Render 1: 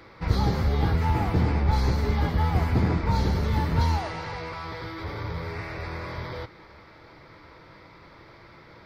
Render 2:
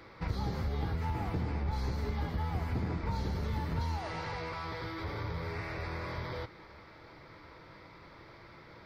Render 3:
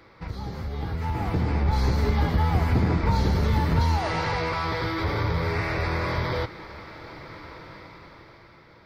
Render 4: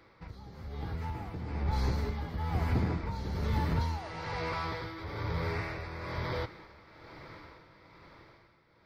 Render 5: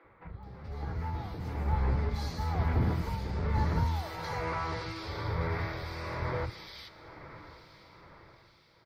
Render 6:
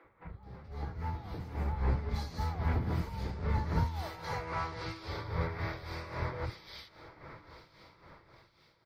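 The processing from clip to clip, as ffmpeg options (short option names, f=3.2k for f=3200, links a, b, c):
-af "acompressor=threshold=-29dB:ratio=3,volume=-3.5dB"
-af "dynaudnorm=f=230:g=11:m=12dB"
-af "tremolo=f=1.1:d=0.61,volume=-7dB"
-filter_complex "[0:a]acrossover=split=270|2600[a][b][c];[a]adelay=40[d];[c]adelay=430[e];[d][b][e]amix=inputs=3:normalize=0,volume=2dB"
-af "tremolo=f=3.7:d=0.65"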